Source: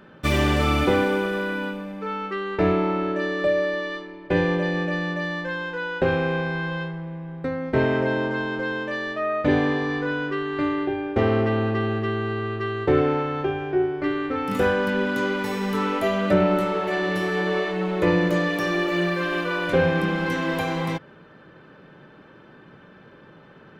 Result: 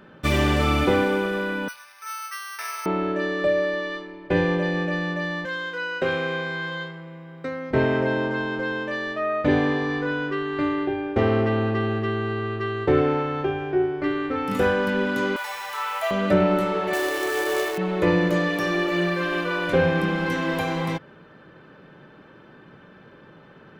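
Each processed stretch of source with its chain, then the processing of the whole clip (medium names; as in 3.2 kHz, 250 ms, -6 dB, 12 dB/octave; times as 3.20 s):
1.68–2.86 s: high-pass 1.2 kHz 24 dB/octave + careless resampling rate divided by 6×, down none, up hold
5.45–7.71 s: high-pass 54 Hz + tilt EQ +2.5 dB/octave + comb of notches 870 Hz
15.36–16.11 s: steep high-pass 610 Hz 48 dB/octave + word length cut 8-bit, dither triangular
16.93–17.78 s: brick-wall FIR high-pass 280 Hz + companded quantiser 4-bit
whole clip: none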